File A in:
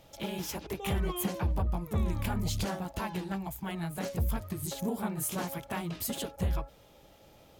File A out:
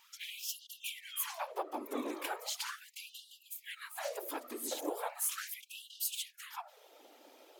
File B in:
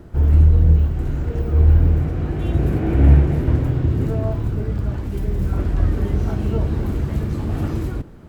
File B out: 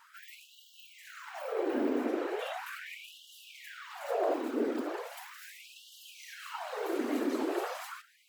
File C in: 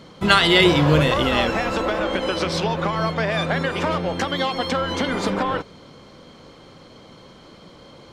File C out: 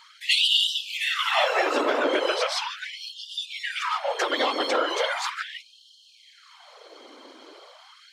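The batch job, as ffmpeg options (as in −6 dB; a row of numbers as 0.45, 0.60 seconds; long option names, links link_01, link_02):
-af "afftfilt=real='hypot(re,im)*cos(2*PI*random(0))':imag='hypot(re,im)*sin(2*PI*random(1))':win_size=512:overlap=0.75,acontrast=50,afftfilt=real='re*gte(b*sr/1024,220*pow(2800/220,0.5+0.5*sin(2*PI*0.38*pts/sr)))':imag='im*gte(b*sr/1024,220*pow(2800/220,0.5+0.5*sin(2*PI*0.38*pts/sr)))':win_size=1024:overlap=0.75"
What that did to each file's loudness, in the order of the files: −5.5, −16.0, −4.0 LU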